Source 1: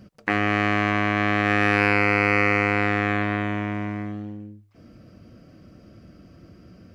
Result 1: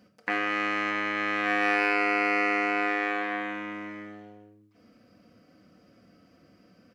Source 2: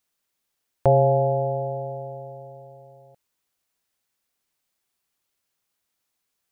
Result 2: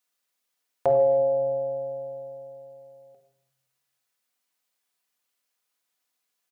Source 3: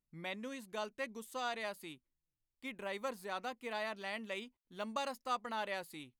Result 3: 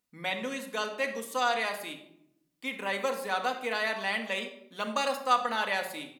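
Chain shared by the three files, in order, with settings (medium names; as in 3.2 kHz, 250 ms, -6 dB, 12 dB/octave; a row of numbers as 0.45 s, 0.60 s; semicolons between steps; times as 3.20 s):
high-pass 490 Hz 6 dB/octave; speakerphone echo 140 ms, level -25 dB; simulated room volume 1900 m³, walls furnished, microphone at 1.9 m; peak normalisation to -12 dBFS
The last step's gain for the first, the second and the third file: -5.5 dB, -2.0 dB, +10.0 dB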